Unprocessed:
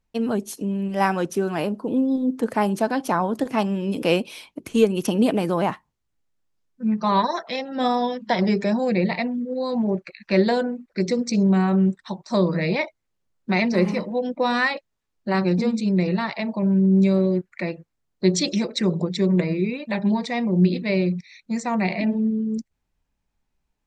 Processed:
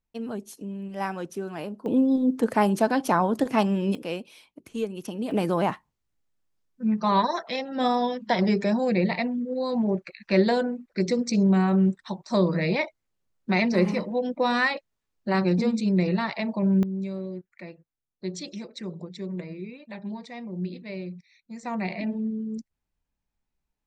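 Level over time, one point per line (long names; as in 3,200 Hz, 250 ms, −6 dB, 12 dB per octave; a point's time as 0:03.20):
−9.5 dB
from 0:01.86 0 dB
from 0:03.95 −12 dB
from 0:05.31 −2 dB
from 0:16.83 −14 dB
from 0:21.63 −7 dB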